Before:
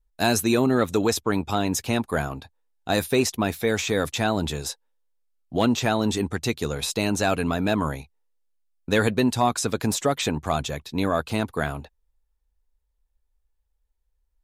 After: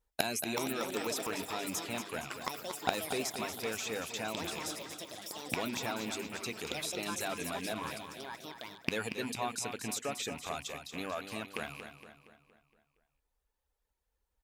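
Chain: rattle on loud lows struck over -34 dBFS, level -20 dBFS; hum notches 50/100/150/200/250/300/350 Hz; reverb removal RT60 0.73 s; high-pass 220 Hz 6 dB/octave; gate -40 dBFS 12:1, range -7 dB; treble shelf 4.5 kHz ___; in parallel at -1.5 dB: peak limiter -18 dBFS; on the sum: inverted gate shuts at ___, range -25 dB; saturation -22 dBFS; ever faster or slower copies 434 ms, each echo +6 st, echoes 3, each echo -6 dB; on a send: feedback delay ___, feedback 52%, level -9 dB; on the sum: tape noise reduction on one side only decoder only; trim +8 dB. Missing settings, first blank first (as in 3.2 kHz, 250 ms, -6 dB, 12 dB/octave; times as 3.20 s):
+5 dB, -22 dBFS, 233 ms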